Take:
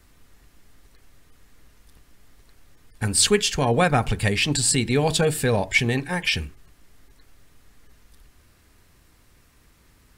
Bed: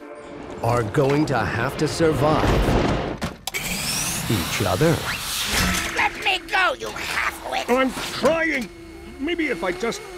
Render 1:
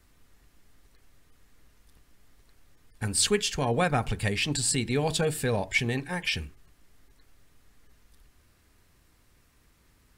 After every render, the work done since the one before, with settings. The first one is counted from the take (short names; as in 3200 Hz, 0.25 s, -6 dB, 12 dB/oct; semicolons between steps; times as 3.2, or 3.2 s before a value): gain -6 dB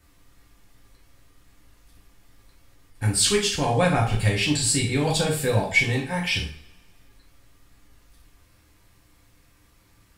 two-slope reverb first 0.42 s, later 1.7 s, from -25 dB, DRR -3 dB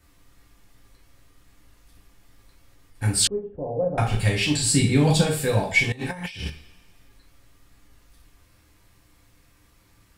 3.27–3.98 ladder low-pass 620 Hz, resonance 60%; 4.73–5.24 bell 190 Hz +9 dB 1.4 oct; 5.92–6.5 negative-ratio compressor -31 dBFS, ratio -0.5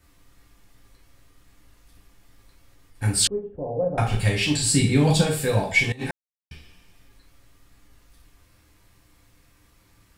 6.11–6.51 mute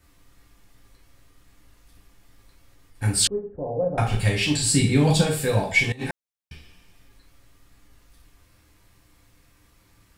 3.34–3.79 resonant high shelf 2500 Hz -13 dB, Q 1.5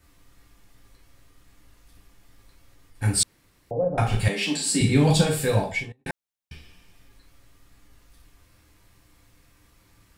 3.23–3.71 room tone; 4.28–4.81 rippled Chebyshev high-pass 160 Hz, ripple 3 dB; 5.54–6.06 studio fade out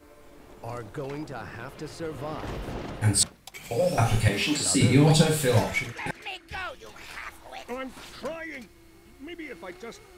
add bed -16 dB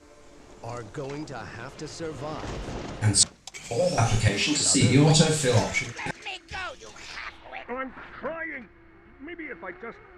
low-pass sweep 6800 Hz -> 1700 Hz, 7.02–7.7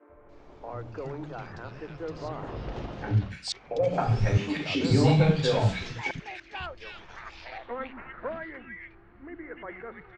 air absorption 240 m; three bands offset in time mids, lows, highs 90/290 ms, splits 250/1900 Hz